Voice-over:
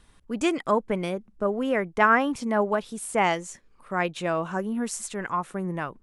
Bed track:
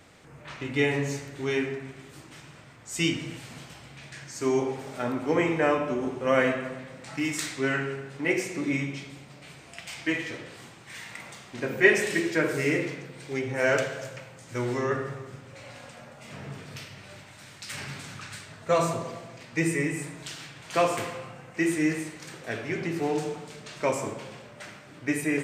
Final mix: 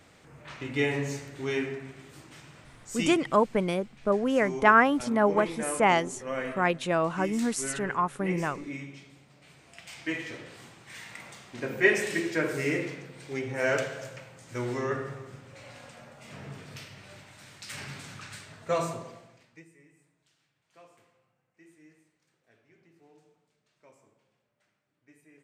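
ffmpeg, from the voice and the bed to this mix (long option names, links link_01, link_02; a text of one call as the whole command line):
ffmpeg -i stem1.wav -i stem2.wav -filter_complex "[0:a]adelay=2650,volume=0.5dB[link_01];[1:a]volume=5dB,afade=type=out:start_time=2.85:duration=0.33:silence=0.398107,afade=type=in:start_time=9.32:duration=1.13:silence=0.421697,afade=type=out:start_time=18.56:duration=1.09:silence=0.0354813[link_02];[link_01][link_02]amix=inputs=2:normalize=0" out.wav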